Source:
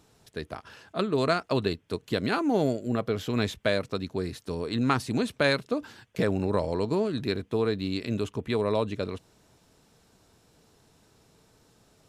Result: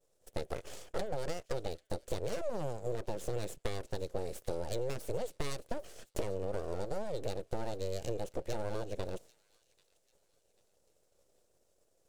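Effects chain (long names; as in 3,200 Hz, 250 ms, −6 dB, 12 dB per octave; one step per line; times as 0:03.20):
full-wave rectification
octave-band graphic EQ 250/500/1,000/2,000/4,000/8,000 Hz −8/+12/−8/−5/−5/+4 dB
downward compressor 12 to 1, threshold −37 dBFS, peak gain reduction 18.5 dB
downward expander −49 dBFS
on a send: delay with a high-pass on its return 791 ms, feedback 37%, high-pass 2,500 Hz, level −19 dB
on the sum: level +6 dB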